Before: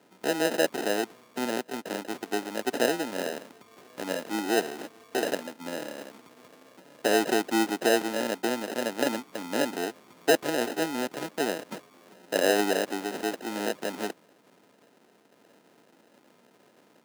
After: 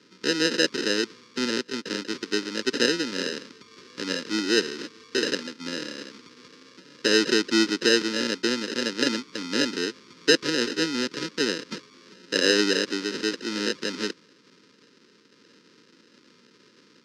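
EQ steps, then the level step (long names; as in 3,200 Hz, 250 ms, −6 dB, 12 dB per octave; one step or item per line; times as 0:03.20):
Butterworth band-reject 720 Hz, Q 1.2
low-pass with resonance 5,100 Hz, resonance Q 3
+4.0 dB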